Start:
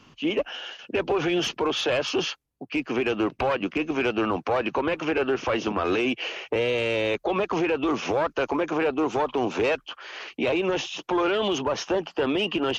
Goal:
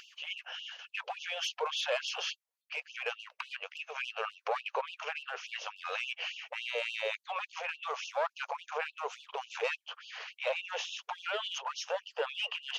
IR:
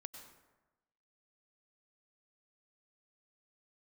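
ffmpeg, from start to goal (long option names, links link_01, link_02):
-af "aeval=exprs='0.15*(cos(1*acos(clip(val(0)/0.15,-1,1)))-cos(1*PI/2))+0.000944*(cos(6*acos(clip(val(0)/0.15,-1,1)))-cos(6*PI/2))':channel_layout=same,acompressor=mode=upward:threshold=-35dB:ratio=2.5,afftfilt=real='re*gte(b*sr/1024,420*pow(2700/420,0.5+0.5*sin(2*PI*3.5*pts/sr)))':imag='im*gte(b*sr/1024,420*pow(2700/420,0.5+0.5*sin(2*PI*3.5*pts/sr)))':win_size=1024:overlap=0.75,volume=-6dB"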